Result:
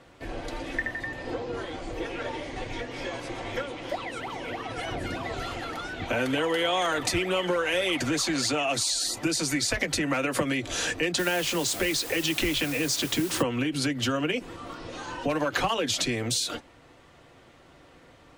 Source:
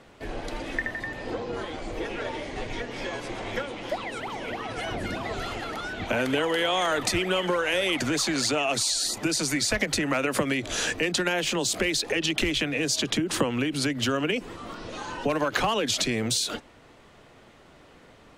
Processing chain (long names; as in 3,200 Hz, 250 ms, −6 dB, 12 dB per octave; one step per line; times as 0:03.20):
notch comb filter 210 Hz
0:11.18–0:13.41: background noise white −39 dBFS